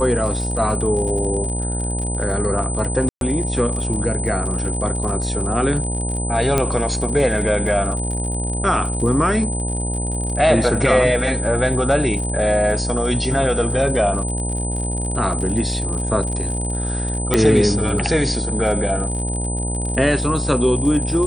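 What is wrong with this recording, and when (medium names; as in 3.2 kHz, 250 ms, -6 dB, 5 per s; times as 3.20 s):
buzz 60 Hz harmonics 16 -24 dBFS
crackle 60 per s -27 dBFS
whine 8.1 kHz -26 dBFS
3.09–3.21 s: dropout 122 ms
6.58 s: pop -4 dBFS
17.34 s: pop -2 dBFS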